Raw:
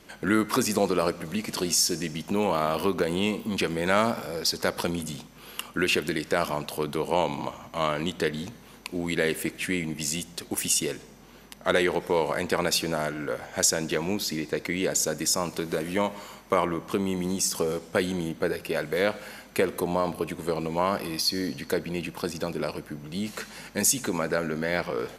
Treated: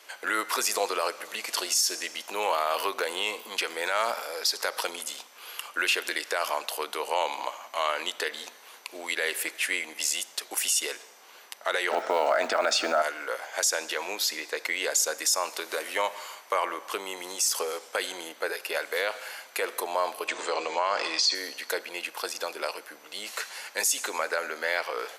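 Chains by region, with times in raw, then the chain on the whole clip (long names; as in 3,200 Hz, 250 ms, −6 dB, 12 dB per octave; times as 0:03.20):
0:11.91–0:13.02: low-pass filter 7,600 Hz 24 dB per octave + noise that follows the level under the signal 30 dB + hollow resonant body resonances 240/640/1,300 Hz, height 16 dB, ringing for 25 ms
0:20.28–0:21.35: Butterworth low-pass 8,000 Hz 48 dB per octave + mains-hum notches 60/120/180/240/300/360/420/480/540 Hz + envelope flattener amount 50%
whole clip: Bessel high-pass filter 760 Hz, order 4; brickwall limiter −18.5 dBFS; level +4 dB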